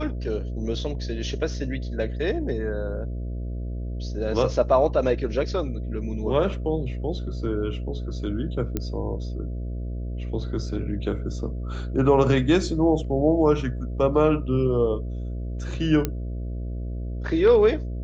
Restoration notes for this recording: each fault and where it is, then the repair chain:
buzz 60 Hz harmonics 11 -30 dBFS
8.77 pop -13 dBFS
16.05 pop -10 dBFS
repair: de-click; de-hum 60 Hz, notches 11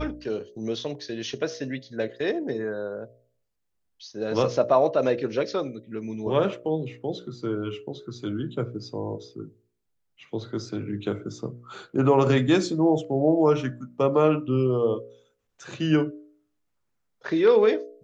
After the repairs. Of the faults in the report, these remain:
none

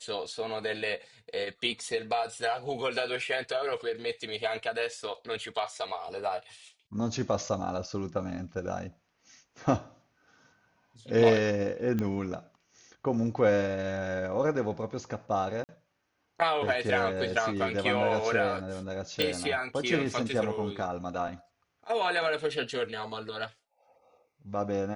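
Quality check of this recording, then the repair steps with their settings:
11.99 pop -19 dBFS
15.64–15.69 gap 49 ms
19.22 pop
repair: de-click; interpolate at 15.64, 49 ms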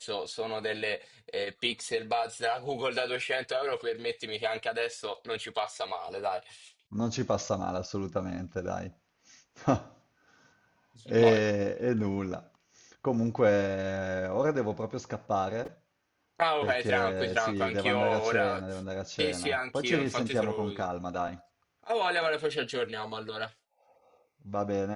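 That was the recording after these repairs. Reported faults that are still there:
none

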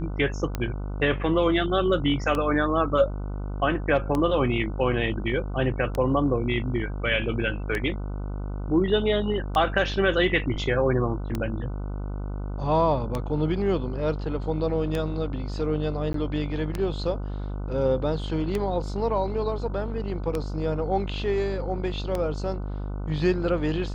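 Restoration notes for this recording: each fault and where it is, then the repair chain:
buzz 50 Hz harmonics 30 -31 dBFS
tick 33 1/3 rpm -14 dBFS
16.13–16.14 gap 13 ms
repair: de-click; de-hum 50 Hz, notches 30; interpolate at 16.13, 13 ms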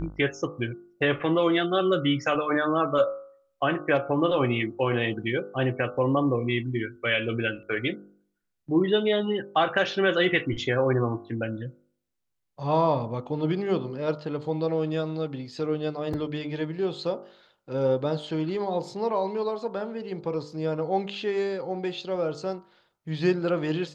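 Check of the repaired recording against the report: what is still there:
none

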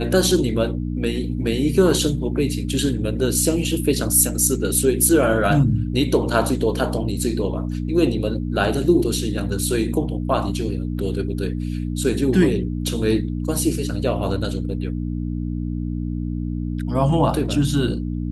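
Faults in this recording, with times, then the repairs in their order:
hum 60 Hz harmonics 5 -25 dBFS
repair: de-hum 60 Hz, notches 5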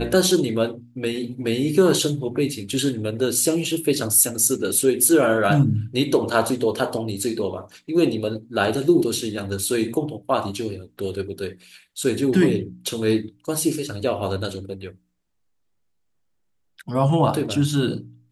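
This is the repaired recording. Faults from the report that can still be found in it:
none

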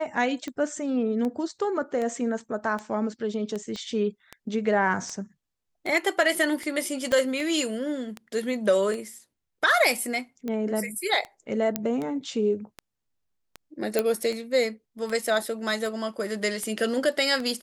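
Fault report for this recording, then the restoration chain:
tick 78 rpm -20 dBFS
3.76 pop -23 dBFS
7.12 pop -13 dBFS
11.76 pop -9 dBFS
13.99 pop -9 dBFS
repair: de-click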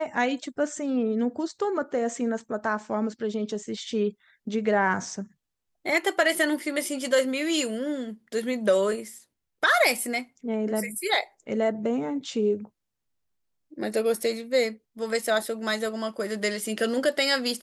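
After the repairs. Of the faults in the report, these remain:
3.76 pop
7.12 pop
11.76 pop

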